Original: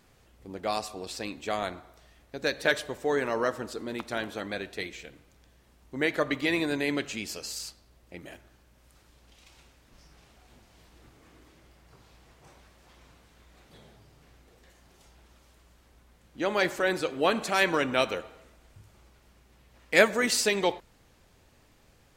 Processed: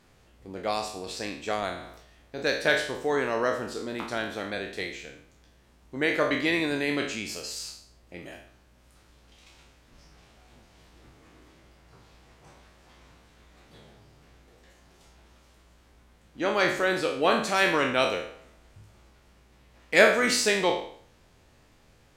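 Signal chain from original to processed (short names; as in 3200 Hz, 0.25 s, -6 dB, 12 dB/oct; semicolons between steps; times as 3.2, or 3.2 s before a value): spectral trails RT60 0.56 s; high shelf 12000 Hz -9.5 dB; 1.74–2.51 sustainer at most 60 dB/s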